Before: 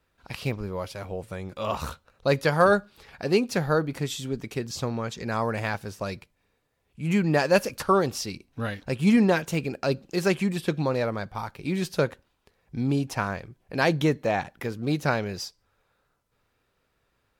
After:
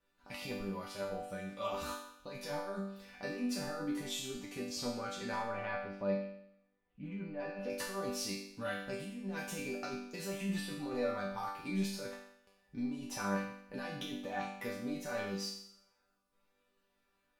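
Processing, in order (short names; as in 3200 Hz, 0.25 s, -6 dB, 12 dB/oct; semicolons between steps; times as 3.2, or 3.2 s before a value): negative-ratio compressor -28 dBFS, ratio -1; 5.42–7.7 air absorption 380 m; resonator bank G3 major, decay 0.71 s; gain +12 dB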